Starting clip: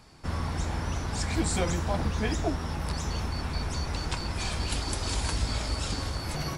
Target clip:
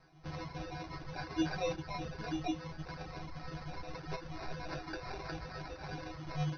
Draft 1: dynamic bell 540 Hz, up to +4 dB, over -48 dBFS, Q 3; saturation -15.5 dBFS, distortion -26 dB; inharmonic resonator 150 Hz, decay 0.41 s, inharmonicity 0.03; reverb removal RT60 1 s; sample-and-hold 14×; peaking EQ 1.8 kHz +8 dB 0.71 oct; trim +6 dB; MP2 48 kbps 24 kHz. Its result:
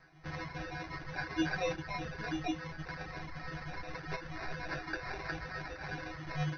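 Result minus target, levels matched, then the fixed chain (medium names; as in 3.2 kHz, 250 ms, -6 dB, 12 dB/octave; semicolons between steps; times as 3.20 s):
2 kHz band +5.5 dB
dynamic bell 540 Hz, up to +4 dB, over -48 dBFS, Q 3; saturation -15.5 dBFS, distortion -26 dB; inharmonic resonator 150 Hz, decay 0.41 s, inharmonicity 0.03; reverb removal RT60 1 s; sample-and-hold 14×; peaking EQ 1.8 kHz -2 dB 0.71 oct; trim +6 dB; MP2 48 kbps 24 kHz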